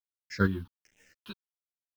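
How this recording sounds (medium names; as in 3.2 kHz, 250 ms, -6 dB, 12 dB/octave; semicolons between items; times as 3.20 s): a quantiser's noise floor 8-bit, dither none; phasing stages 6, 1.3 Hz, lowest notch 520–1200 Hz; chopped level 2.5 Hz, depth 60%, duty 15%; a shimmering, thickened sound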